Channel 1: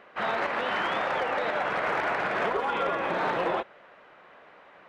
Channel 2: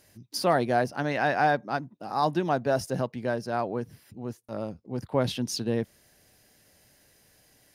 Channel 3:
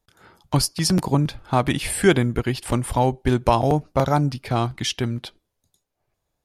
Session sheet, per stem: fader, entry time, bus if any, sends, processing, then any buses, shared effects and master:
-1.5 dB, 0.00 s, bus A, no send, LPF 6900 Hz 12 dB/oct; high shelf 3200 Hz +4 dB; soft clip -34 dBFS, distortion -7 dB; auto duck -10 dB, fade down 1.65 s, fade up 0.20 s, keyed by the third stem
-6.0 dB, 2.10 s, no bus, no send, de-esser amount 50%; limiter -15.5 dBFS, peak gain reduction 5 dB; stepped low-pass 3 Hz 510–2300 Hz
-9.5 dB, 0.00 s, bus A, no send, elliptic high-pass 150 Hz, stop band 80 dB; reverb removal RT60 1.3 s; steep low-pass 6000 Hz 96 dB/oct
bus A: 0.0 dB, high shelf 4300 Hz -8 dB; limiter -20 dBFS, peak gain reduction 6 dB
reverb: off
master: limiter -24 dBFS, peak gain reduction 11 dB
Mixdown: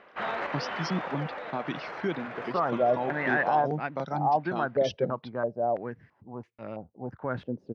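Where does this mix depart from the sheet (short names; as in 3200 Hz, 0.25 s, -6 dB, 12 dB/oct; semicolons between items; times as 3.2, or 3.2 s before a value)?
stem 1: missing soft clip -34 dBFS, distortion -7 dB; master: missing limiter -24 dBFS, peak gain reduction 11 dB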